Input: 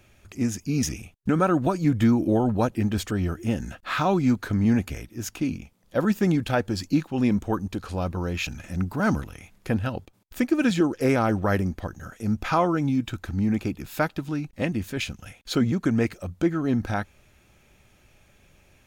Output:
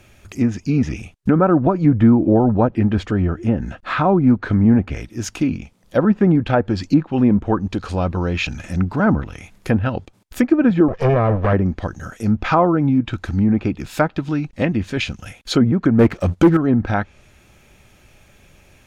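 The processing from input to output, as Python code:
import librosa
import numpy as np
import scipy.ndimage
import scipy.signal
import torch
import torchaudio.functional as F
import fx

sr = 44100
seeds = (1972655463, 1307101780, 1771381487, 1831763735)

y = fx.lower_of_two(x, sr, delay_ms=1.7, at=(10.88, 11.53))
y = fx.env_lowpass_down(y, sr, base_hz=1200.0, full_db=-18.5)
y = fx.high_shelf(y, sr, hz=2700.0, db=-9.0, at=(3.05, 4.27))
y = fx.leveller(y, sr, passes=2, at=(15.99, 16.57))
y = y * 10.0 ** (7.5 / 20.0)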